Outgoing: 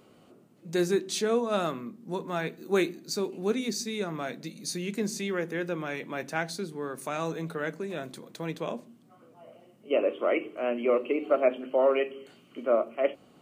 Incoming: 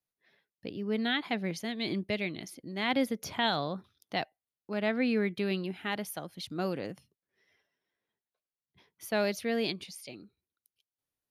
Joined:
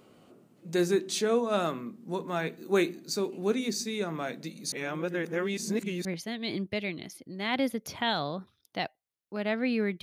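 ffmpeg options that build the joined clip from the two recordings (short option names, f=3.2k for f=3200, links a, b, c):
-filter_complex "[0:a]apad=whole_dur=10.02,atrim=end=10.02,asplit=2[a][b];[a]atrim=end=4.722[c];[b]atrim=start=4.718:end=6.052,asetpts=PTS-STARTPTS,areverse[d];[1:a]atrim=start=1.418:end=5.39[e];[c][d]acrossfade=d=0.004:c1=hsin:c2=hsin[f];[f][e]acrossfade=d=0.004:c1=hsin:c2=hsin"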